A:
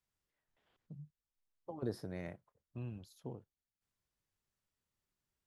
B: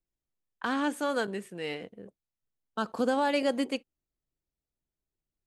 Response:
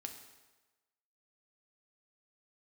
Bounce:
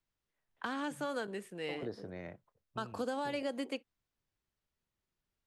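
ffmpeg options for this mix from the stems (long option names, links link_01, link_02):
-filter_complex "[0:a]lowpass=4900,volume=0.5dB[link_01];[1:a]volume=-3.5dB[link_02];[link_01][link_02]amix=inputs=2:normalize=0,acrossover=split=280|3400[link_03][link_04][link_05];[link_03]acompressor=threshold=-48dB:ratio=4[link_06];[link_04]acompressor=threshold=-35dB:ratio=4[link_07];[link_05]acompressor=threshold=-53dB:ratio=4[link_08];[link_06][link_07][link_08]amix=inputs=3:normalize=0"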